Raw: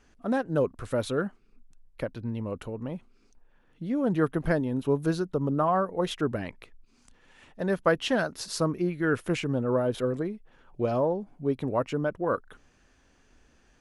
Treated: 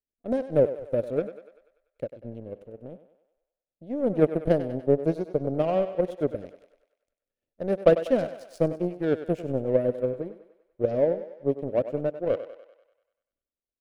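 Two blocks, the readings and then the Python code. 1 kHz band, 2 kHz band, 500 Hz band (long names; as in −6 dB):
−5.5 dB, −9.0 dB, +4.0 dB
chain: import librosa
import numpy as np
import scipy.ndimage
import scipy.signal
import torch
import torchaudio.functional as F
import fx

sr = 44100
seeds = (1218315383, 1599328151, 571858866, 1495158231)

y = fx.power_curve(x, sr, exponent=2.0)
y = fx.low_shelf_res(y, sr, hz=750.0, db=9.0, q=3.0)
y = fx.echo_thinned(y, sr, ms=97, feedback_pct=59, hz=380.0, wet_db=-11.0)
y = y * 10.0 ** (-1.5 / 20.0)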